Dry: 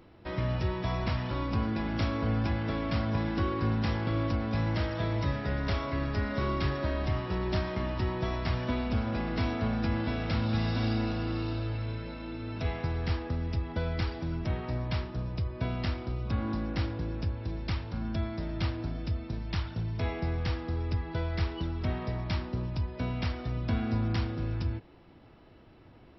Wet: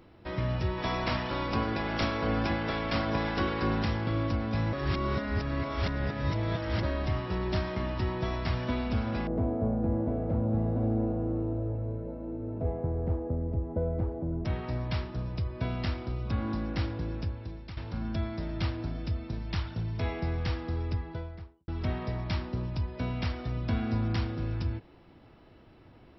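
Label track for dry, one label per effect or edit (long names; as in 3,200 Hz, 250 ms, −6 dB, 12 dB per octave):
0.770000	3.830000	ceiling on every frequency bin ceiling under each frame's peak by 13 dB
4.730000	6.830000	reverse
9.270000	14.450000	low-pass with resonance 560 Hz, resonance Q 1.9
17.140000	17.770000	fade out, to −13.5 dB
20.760000	21.680000	fade out and dull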